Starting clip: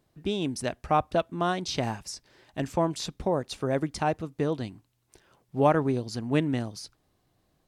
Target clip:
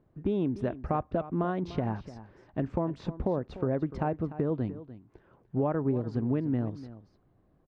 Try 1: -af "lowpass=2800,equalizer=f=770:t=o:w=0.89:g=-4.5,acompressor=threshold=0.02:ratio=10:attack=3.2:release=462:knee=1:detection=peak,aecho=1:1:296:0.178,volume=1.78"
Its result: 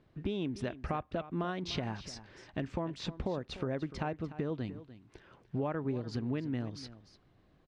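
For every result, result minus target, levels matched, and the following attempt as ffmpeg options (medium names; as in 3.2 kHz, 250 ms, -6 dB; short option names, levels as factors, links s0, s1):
2 kHz band +7.5 dB; compression: peak gain reduction +7 dB
-af "lowpass=1100,equalizer=f=770:t=o:w=0.89:g=-4.5,acompressor=threshold=0.02:ratio=10:attack=3.2:release=462:knee=1:detection=peak,aecho=1:1:296:0.178,volume=1.78"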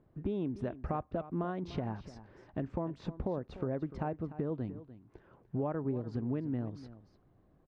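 compression: peak gain reduction +6.5 dB
-af "lowpass=1100,equalizer=f=770:t=o:w=0.89:g=-4.5,acompressor=threshold=0.0447:ratio=10:attack=3.2:release=462:knee=1:detection=peak,aecho=1:1:296:0.178,volume=1.78"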